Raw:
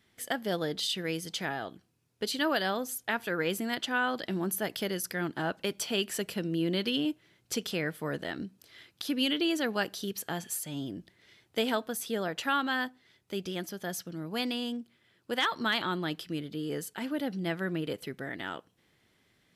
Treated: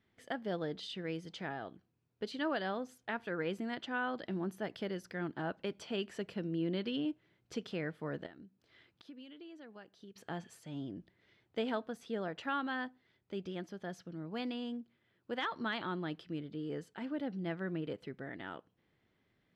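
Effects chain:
0:08.26–0:10.16: downward compressor 3 to 1, threshold −49 dBFS, peak gain reduction 18 dB
head-to-tape spacing loss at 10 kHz 23 dB
level −4.5 dB

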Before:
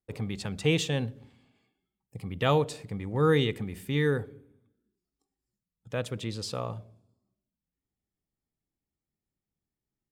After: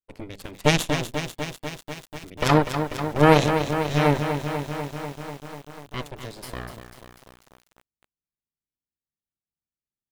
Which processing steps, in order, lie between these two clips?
harmonic generator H 4 −6 dB, 7 −18 dB, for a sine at −10.5 dBFS
feedback echo at a low word length 246 ms, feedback 80%, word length 8 bits, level −8 dB
level +6 dB

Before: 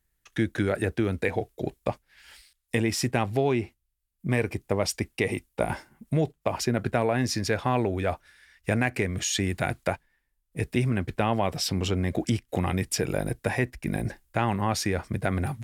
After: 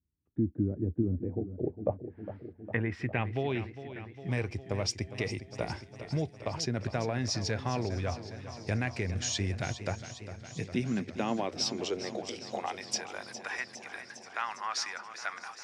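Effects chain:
low-pass filter sweep 280 Hz → 5,600 Hz, 0:01.26–0:03.95
delay with a high-pass on its return 650 ms, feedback 70%, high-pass 4,700 Hz, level −19 dB
high-pass filter sweep 81 Hz → 1,200 Hz, 0:09.72–0:13.39
0:01.29–0:02.77: parametric band 1,900 Hz +7.5 dB 2 octaves
feedback echo with a swinging delay time 407 ms, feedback 71%, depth 53 cents, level −12.5 dB
level −9 dB

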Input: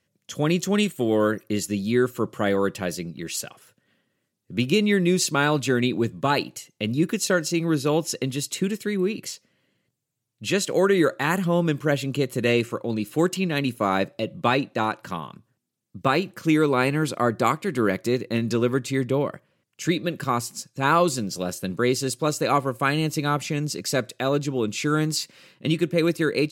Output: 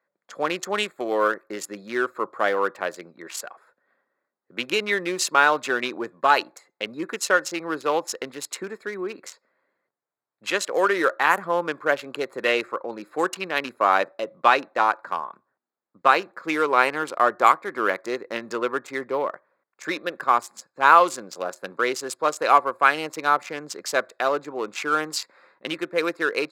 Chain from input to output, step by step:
adaptive Wiener filter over 15 samples
high-pass filter 510 Hz 12 dB per octave
parametric band 1,200 Hz +9 dB 2.2 octaves
level −1 dB

